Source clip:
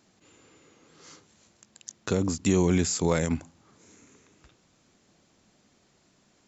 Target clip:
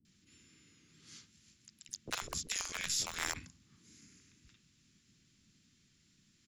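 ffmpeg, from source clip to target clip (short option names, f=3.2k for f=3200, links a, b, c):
-filter_complex "[0:a]aeval=exprs='0.266*(cos(1*acos(clip(val(0)/0.266,-1,1)))-cos(1*PI/2))+0.0668*(cos(2*acos(clip(val(0)/0.266,-1,1)))-cos(2*PI/2))+0.00335*(cos(4*acos(clip(val(0)/0.266,-1,1)))-cos(4*PI/2))':c=same,adynamicequalizer=threshold=0.00158:dfrequency=1100:dqfactor=7.5:tfrequency=1100:tqfactor=7.5:attack=5:release=100:ratio=0.375:range=3.5:mode=boostabove:tftype=bell,asplit=3[a][b][c];[b]asetrate=33038,aresample=44100,atempo=1.33484,volume=-5dB[d];[c]asetrate=66075,aresample=44100,atempo=0.66742,volume=-15dB[e];[a][d][e]amix=inputs=3:normalize=0,afftfilt=real='re*lt(hypot(re,im),0.126)':imag='im*lt(hypot(re,im),0.126)':win_size=1024:overlap=0.75,acrossover=split=320|1600[f][g][h];[g]acrusher=bits=4:mix=0:aa=0.000001[i];[f][i][h]amix=inputs=3:normalize=0,acrossover=split=500[j][k];[k]adelay=50[l];[j][l]amix=inputs=2:normalize=0,volume=-4dB"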